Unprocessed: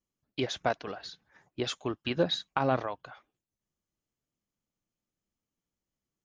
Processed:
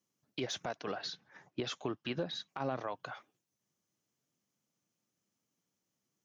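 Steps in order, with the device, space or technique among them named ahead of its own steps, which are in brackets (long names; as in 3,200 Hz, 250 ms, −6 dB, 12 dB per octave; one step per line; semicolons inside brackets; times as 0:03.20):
broadcast voice chain (high-pass filter 110 Hz 24 dB per octave; de-essing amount 90%; downward compressor 5 to 1, threshold −36 dBFS, peak gain reduction 14 dB; parametric band 5,900 Hz +6 dB 0.36 octaves; brickwall limiter −29.5 dBFS, peak gain reduction 10.5 dB)
0:00.86–0:02.49: low-pass filter 5,100 Hz 12 dB per octave
level +4 dB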